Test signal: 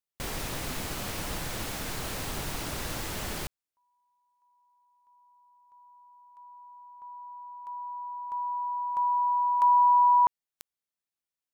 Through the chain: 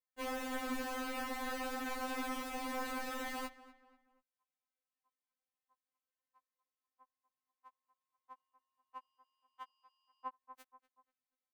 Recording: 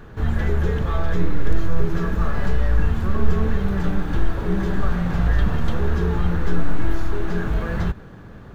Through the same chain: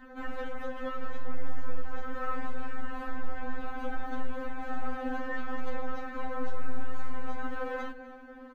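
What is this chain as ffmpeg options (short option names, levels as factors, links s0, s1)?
-filter_complex "[0:a]acrossover=split=220 2300:gain=0.224 1 0.251[s0][s1][s2];[s0][s1][s2]amix=inputs=3:normalize=0,asplit=2[s3][s4];[s4]adelay=242,lowpass=f=2800:p=1,volume=0.141,asplit=2[s5][s6];[s6]adelay=242,lowpass=f=2800:p=1,volume=0.41,asplit=2[s7][s8];[s8]adelay=242,lowpass=f=2800:p=1,volume=0.41[s9];[s5][s7][s9]amix=inputs=3:normalize=0[s10];[s3][s10]amix=inputs=2:normalize=0,acompressor=threshold=0.0447:ratio=3:attack=18:release=171:knee=1,asoftclip=type=tanh:threshold=0.1,afftfilt=real='re*3.46*eq(mod(b,12),0)':imag='im*3.46*eq(mod(b,12),0)':win_size=2048:overlap=0.75,volume=1.19"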